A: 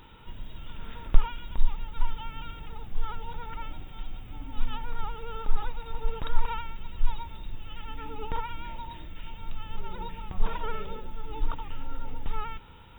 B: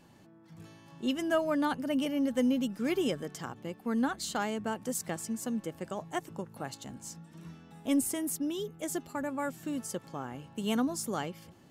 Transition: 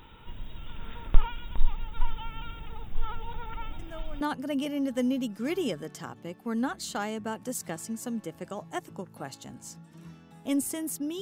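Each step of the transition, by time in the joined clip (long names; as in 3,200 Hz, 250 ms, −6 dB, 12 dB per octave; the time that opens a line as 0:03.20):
A
0:03.79: mix in B from 0:01.19 0.42 s −16 dB
0:04.21: continue with B from 0:01.61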